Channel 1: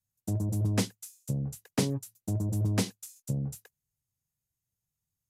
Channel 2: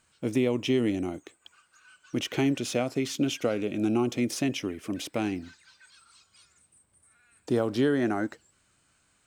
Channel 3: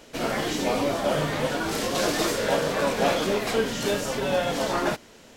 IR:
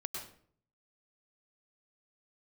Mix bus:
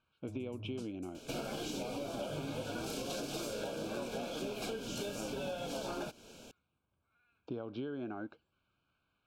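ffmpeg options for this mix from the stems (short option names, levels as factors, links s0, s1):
-filter_complex "[0:a]lowpass=9200,volume=0.178[s0];[1:a]lowpass=f=3600:w=0.5412,lowpass=f=3600:w=1.3066,volume=0.335[s1];[2:a]equalizer=f=1100:t=o:w=0.57:g=-7.5,alimiter=limit=0.15:level=0:latency=1:release=494,adelay=1150,volume=0.75[s2];[s0][s1][s2]amix=inputs=3:normalize=0,asuperstop=centerf=1900:order=8:qfactor=3.4,acompressor=threshold=0.0141:ratio=6"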